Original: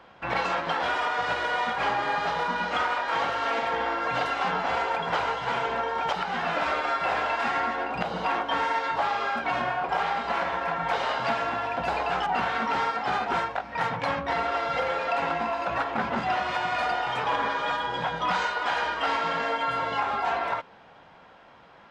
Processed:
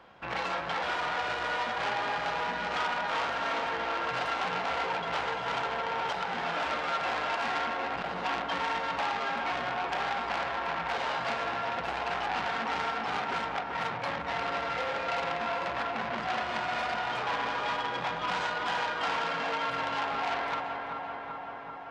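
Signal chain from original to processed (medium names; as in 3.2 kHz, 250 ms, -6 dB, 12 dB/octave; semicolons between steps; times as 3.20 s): on a send: filtered feedback delay 387 ms, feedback 73%, low-pass 4.2 kHz, level -7 dB; on the sum: transformer saturation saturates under 2.5 kHz; trim -3 dB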